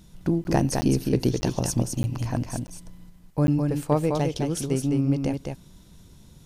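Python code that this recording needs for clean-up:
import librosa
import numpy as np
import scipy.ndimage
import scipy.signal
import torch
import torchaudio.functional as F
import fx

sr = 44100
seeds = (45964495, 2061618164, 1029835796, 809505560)

y = fx.fix_declip(x, sr, threshold_db=-10.5)
y = fx.fix_interpolate(y, sr, at_s=(0.44, 0.81, 1.41, 2.03, 2.67, 3.47), length_ms=10.0)
y = fx.fix_echo_inverse(y, sr, delay_ms=209, level_db=-4.5)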